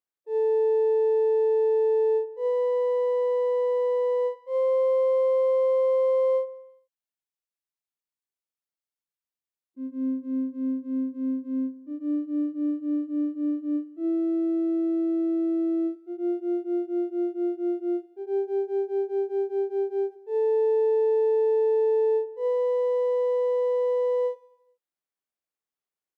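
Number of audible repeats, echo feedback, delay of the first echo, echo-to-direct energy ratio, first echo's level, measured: 4, 59%, 84 ms, −17.0 dB, −19.0 dB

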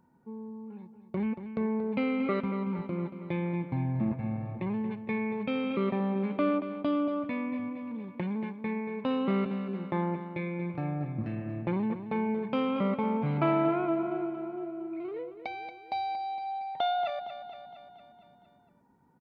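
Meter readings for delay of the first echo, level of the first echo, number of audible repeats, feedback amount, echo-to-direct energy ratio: 231 ms, −11.0 dB, 6, 60%, −9.0 dB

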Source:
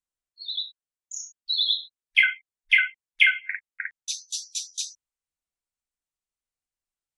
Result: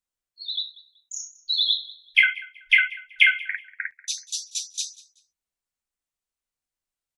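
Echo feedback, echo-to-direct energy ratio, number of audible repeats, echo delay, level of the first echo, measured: 26%, −20.0 dB, 2, 189 ms, −20.5 dB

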